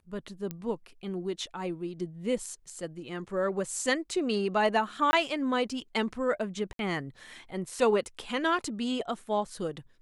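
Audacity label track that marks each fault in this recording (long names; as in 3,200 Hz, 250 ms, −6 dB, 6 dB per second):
0.510000	0.510000	click −21 dBFS
5.110000	5.130000	drop-out 20 ms
6.730000	6.790000	drop-out 62 ms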